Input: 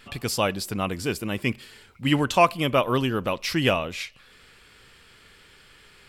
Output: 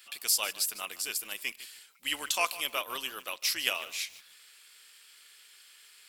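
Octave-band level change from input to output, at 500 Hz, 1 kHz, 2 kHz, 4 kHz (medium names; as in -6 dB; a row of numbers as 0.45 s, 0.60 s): -18.0 dB, -12.5 dB, -5.5 dB, -1.5 dB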